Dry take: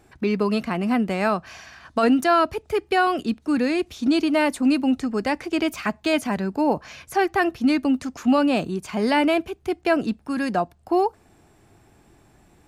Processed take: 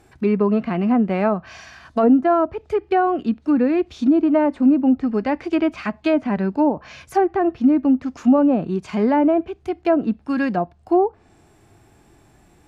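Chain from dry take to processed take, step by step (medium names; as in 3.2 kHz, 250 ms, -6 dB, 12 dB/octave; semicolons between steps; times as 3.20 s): low-pass that closes with the level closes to 810 Hz, closed at -15.5 dBFS; harmonic-percussive split percussive -7 dB; trim +4.5 dB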